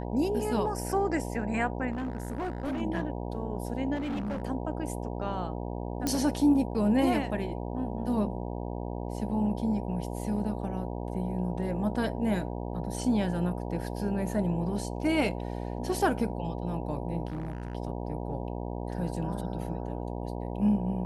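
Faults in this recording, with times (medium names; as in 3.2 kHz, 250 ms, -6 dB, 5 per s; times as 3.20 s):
buzz 60 Hz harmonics 16 -35 dBFS
1.91–2.82 s: clipped -29 dBFS
3.95–4.42 s: clipped -29.5 dBFS
6.07 s: pop -14 dBFS
17.28–17.75 s: clipped -31 dBFS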